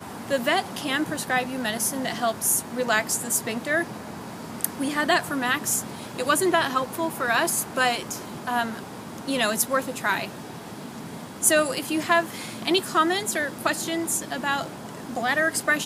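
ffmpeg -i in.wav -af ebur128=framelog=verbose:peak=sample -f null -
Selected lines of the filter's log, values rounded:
Integrated loudness:
  I:         -24.4 LUFS
  Threshold: -34.9 LUFS
Loudness range:
  LRA:         2.2 LU
  Threshold: -44.8 LUFS
  LRA low:   -25.8 LUFS
  LRA high:  -23.6 LUFS
Sample peak:
  Peak:       -1.2 dBFS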